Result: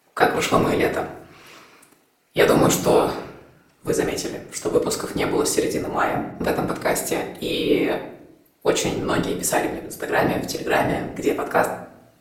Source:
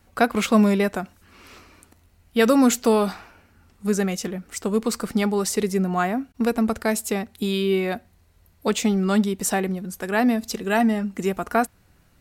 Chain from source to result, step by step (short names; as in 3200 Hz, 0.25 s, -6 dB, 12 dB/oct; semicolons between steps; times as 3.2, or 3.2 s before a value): HPF 280 Hz 24 dB/oct; whisperiser; on a send: reverb RT60 0.75 s, pre-delay 6 ms, DRR 4 dB; on the sum: gain +1.5 dB